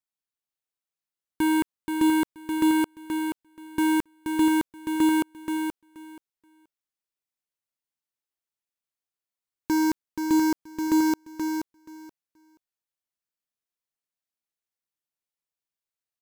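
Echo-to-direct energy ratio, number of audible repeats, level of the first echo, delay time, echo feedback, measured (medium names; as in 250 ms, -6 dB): -6.0 dB, 2, -6.0 dB, 478 ms, 16%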